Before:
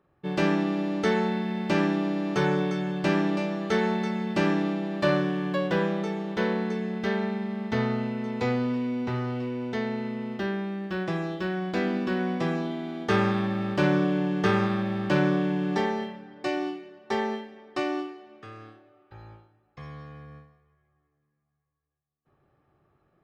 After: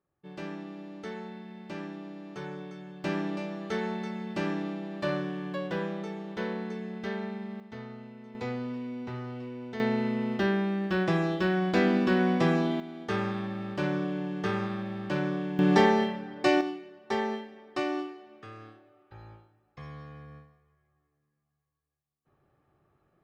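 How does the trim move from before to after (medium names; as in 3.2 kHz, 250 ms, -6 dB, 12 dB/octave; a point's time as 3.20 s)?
-15 dB
from 3.04 s -7 dB
from 7.60 s -16 dB
from 8.35 s -8 dB
from 9.80 s +3 dB
from 12.80 s -7 dB
from 15.59 s +5.5 dB
from 16.61 s -2 dB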